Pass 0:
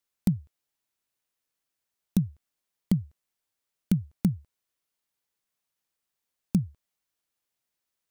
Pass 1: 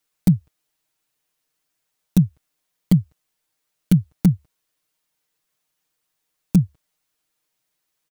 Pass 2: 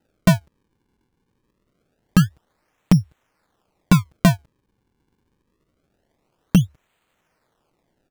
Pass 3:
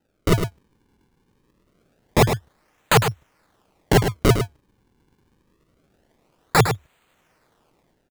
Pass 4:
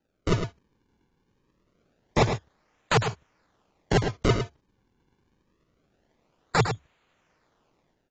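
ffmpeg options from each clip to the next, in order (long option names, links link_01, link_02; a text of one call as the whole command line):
ffmpeg -i in.wav -af "aecho=1:1:6.5:0.92,volume=5.5dB" out.wav
ffmpeg -i in.wav -af "acompressor=threshold=-21dB:ratio=2,acrusher=samples=39:mix=1:aa=0.000001:lfo=1:lforange=62.4:lforate=0.25,volume=6.5dB" out.wav
ffmpeg -i in.wav -af "aeval=exprs='(mod(4.73*val(0)+1,2)-1)/4.73':channel_layout=same,dynaudnorm=framelen=110:gausssize=5:maxgain=7dB,aecho=1:1:106:0.398,volume=-1.5dB" out.wav
ffmpeg -i in.wav -af "volume=-6dB" -ar 16000 -c:a aac -b:a 24k out.aac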